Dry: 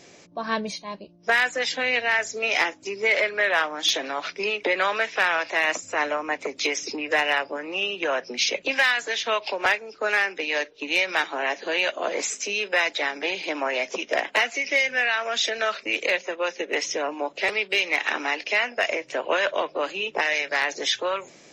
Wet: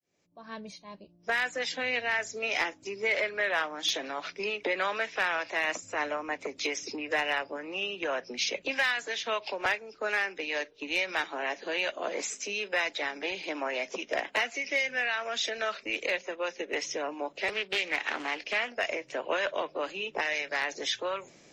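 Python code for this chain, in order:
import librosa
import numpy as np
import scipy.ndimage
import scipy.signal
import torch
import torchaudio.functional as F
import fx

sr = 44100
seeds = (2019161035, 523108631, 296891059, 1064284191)

y = fx.fade_in_head(x, sr, length_s=1.57)
y = fx.low_shelf(y, sr, hz=160.0, db=8.0)
y = fx.doppler_dist(y, sr, depth_ms=0.23, at=(17.53, 18.75))
y = F.gain(torch.from_numpy(y), -7.0).numpy()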